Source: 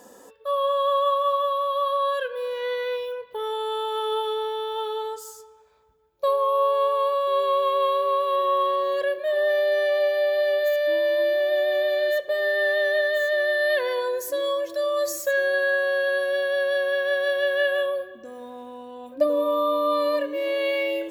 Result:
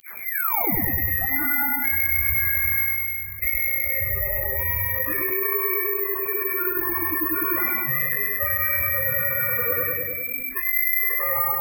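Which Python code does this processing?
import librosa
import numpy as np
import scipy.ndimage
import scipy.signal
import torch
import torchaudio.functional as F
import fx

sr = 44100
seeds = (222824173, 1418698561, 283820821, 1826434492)

y = fx.tape_start_head(x, sr, length_s=1.46)
y = fx.pitch_keep_formants(y, sr, semitones=3.0)
y = fx.rider(y, sr, range_db=5, speed_s=0.5)
y = scipy.signal.sosfilt(scipy.signal.butter(16, 830.0, 'highpass', fs=sr, output='sos'), y)
y = fx.freq_invert(y, sr, carrier_hz=3200)
y = fx.chorus_voices(y, sr, voices=2, hz=1.5, base_ms=12, depth_ms=3.0, mix_pct=35)
y = fx.stretch_vocoder_free(y, sr, factor=0.55)
y = fx.echo_feedback(y, sr, ms=101, feedback_pct=51, wet_db=-4.5)
y = fx.noise_reduce_blind(y, sr, reduce_db=15)
y = (np.kron(y[::3], np.eye(3)[0]) * 3)[:len(y)]
y = fx.env_flatten(y, sr, amount_pct=70)
y = F.gain(torch.from_numpy(y), 1.5).numpy()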